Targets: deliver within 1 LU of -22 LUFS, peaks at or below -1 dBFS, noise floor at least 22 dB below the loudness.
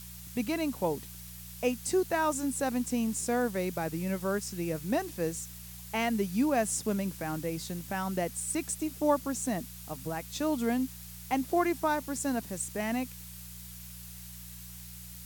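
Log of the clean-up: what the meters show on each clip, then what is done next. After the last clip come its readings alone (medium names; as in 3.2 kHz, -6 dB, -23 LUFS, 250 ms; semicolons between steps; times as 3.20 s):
hum 60 Hz; highest harmonic 180 Hz; hum level -46 dBFS; noise floor -46 dBFS; noise floor target -54 dBFS; loudness -32.0 LUFS; peak level -14.5 dBFS; loudness target -22.0 LUFS
-> de-hum 60 Hz, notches 3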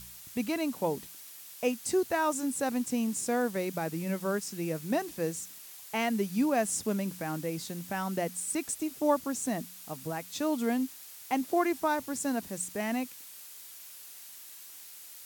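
hum not found; noise floor -48 dBFS; noise floor target -54 dBFS
-> noise reduction 6 dB, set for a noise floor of -48 dBFS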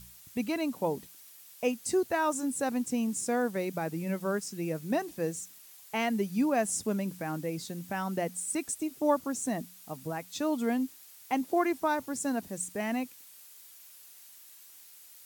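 noise floor -53 dBFS; noise floor target -54 dBFS
-> noise reduction 6 dB, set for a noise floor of -53 dBFS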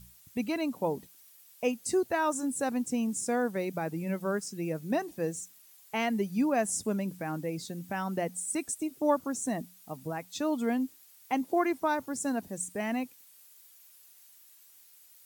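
noise floor -58 dBFS; loudness -32.0 LUFS; peak level -14.5 dBFS; loudness target -22.0 LUFS
-> trim +10 dB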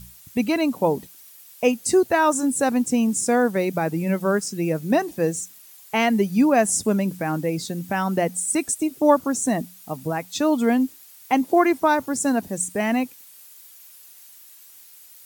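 loudness -22.0 LUFS; peak level -4.5 dBFS; noise floor -48 dBFS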